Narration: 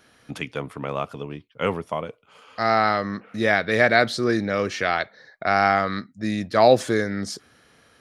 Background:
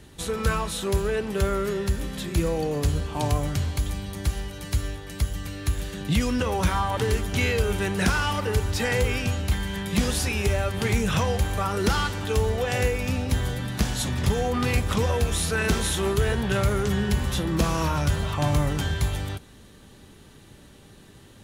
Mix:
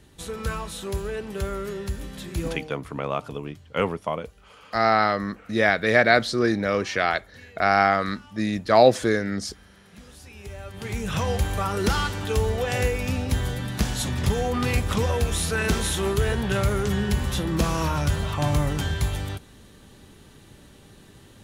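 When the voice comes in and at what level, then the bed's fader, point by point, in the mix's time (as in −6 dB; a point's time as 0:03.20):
2.15 s, 0.0 dB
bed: 0:02.52 −5 dB
0:02.82 −25 dB
0:09.98 −25 dB
0:11.32 0 dB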